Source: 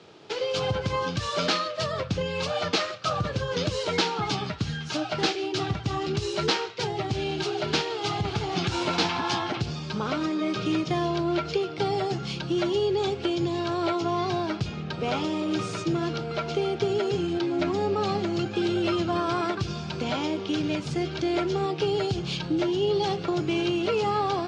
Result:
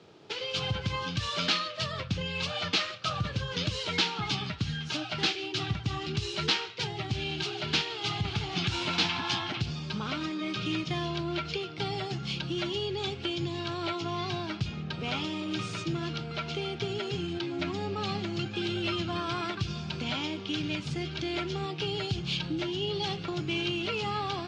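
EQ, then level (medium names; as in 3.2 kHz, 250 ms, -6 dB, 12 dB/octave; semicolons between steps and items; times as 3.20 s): bass shelf 330 Hz +5 dB; dynamic bell 490 Hz, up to -7 dB, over -37 dBFS, Q 0.98; dynamic bell 3 kHz, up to +8 dB, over -46 dBFS, Q 0.96; -6.0 dB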